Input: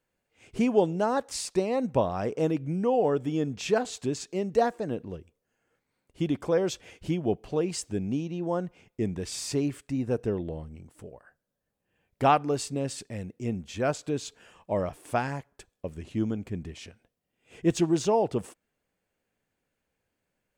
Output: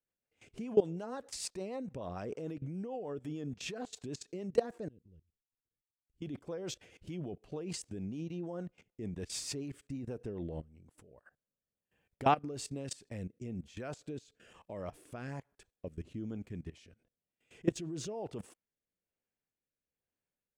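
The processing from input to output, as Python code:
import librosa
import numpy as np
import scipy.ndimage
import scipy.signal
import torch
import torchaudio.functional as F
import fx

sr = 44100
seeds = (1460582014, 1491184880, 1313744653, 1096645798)

y = fx.tone_stack(x, sr, knobs='10-0-1', at=(4.88, 6.22))
y = fx.level_steps(y, sr, step_db=19)
y = fx.rotary_switch(y, sr, hz=6.7, then_hz=1.1, switch_at_s=10.49)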